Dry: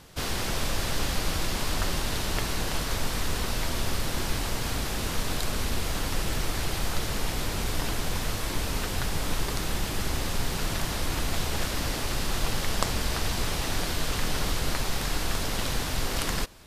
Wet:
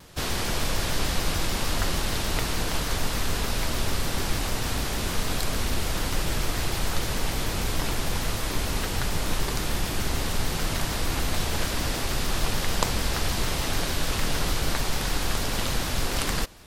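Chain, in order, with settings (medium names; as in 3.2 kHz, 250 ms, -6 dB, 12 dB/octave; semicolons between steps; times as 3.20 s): vibrato with a chosen wave saw down 6.7 Hz, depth 160 cents; trim +2 dB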